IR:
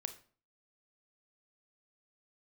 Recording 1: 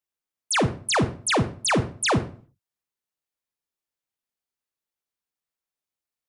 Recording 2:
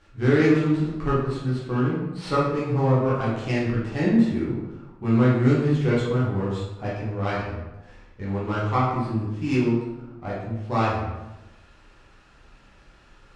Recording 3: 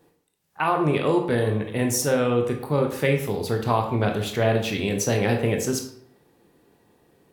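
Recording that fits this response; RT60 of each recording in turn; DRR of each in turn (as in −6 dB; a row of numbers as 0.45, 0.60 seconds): 1; 0.45, 1.0, 0.65 seconds; 9.0, −8.0, 3.0 decibels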